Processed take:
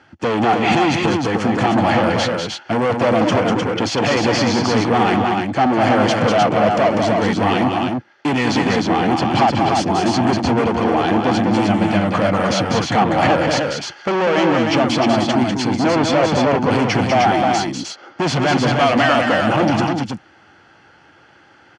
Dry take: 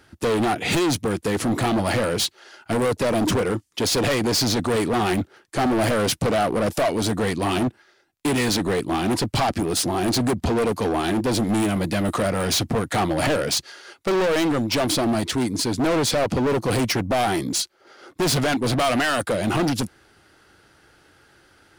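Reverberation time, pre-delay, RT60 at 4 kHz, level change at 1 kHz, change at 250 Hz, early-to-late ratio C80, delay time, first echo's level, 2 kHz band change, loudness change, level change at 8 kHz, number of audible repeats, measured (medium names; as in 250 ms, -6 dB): no reverb, no reverb, no reverb, +9.5 dB, +6.0 dB, no reverb, 196 ms, -5.0 dB, +7.0 dB, +5.5 dB, -3.5 dB, 2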